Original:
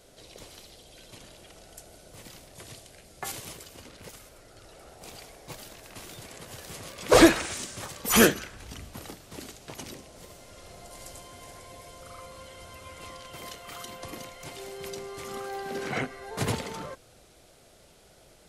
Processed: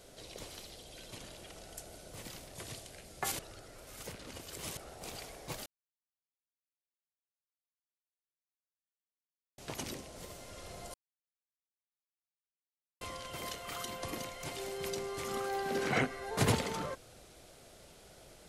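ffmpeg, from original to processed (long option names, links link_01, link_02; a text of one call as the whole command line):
ffmpeg -i in.wav -filter_complex "[0:a]asplit=7[link_01][link_02][link_03][link_04][link_05][link_06][link_07];[link_01]atrim=end=3.392[link_08];[link_02]atrim=start=3.388:end=4.772,asetpts=PTS-STARTPTS,areverse[link_09];[link_03]atrim=start=4.768:end=5.66,asetpts=PTS-STARTPTS,afade=type=out:start_time=0.888:duration=0.004:curve=hsin[link_10];[link_04]atrim=start=5.66:end=9.58,asetpts=PTS-STARTPTS,volume=0[link_11];[link_05]atrim=start=9.58:end=10.94,asetpts=PTS-STARTPTS,afade=type=in:duration=0.004:curve=hsin,afade=type=out:start_time=1.356:duration=0.004:curve=hsin[link_12];[link_06]atrim=start=10.94:end=13.01,asetpts=PTS-STARTPTS,volume=0[link_13];[link_07]atrim=start=13.01,asetpts=PTS-STARTPTS,afade=type=in:duration=0.004:curve=hsin[link_14];[link_08][link_09]acrossfade=duration=0.004:curve1=hsin:curve2=hsin[link_15];[link_10][link_11][link_12][link_13][link_14]concat=n=5:v=0:a=1[link_16];[link_15][link_16]acrossfade=duration=0.004:curve1=hsin:curve2=hsin" out.wav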